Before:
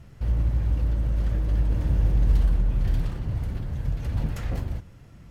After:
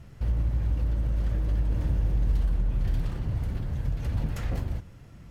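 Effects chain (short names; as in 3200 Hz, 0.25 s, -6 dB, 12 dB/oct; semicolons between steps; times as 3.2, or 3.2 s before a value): compressor 2:1, threshold -24 dBFS, peak gain reduction 5.5 dB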